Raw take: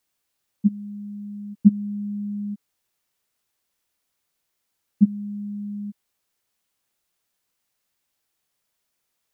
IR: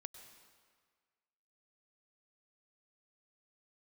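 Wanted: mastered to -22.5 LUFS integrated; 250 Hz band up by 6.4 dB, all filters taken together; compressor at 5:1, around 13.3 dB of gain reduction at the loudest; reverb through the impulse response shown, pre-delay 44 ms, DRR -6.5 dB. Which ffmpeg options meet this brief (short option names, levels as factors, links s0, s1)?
-filter_complex "[0:a]equalizer=f=250:t=o:g=8.5,acompressor=threshold=0.126:ratio=5,asplit=2[s0][s1];[1:a]atrim=start_sample=2205,adelay=44[s2];[s1][s2]afir=irnorm=-1:irlink=0,volume=3.76[s3];[s0][s3]amix=inputs=2:normalize=0,volume=0.631"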